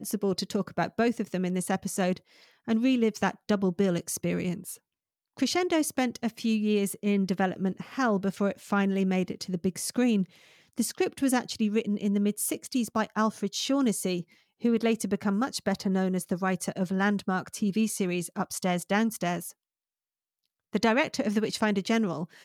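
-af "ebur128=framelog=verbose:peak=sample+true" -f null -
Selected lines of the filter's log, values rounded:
Integrated loudness:
  I:         -28.3 LUFS
  Threshold: -38.5 LUFS
Loudness range:
  LRA:         1.4 LU
  Threshold: -48.8 LUFS
  LRA low:   -29.4 LUFS
  LRA high:  -28.0 LUFS
Sample peak:
  Peak:      -11.7 dBFS
True peak:
  Peak:      -11.7 dBFS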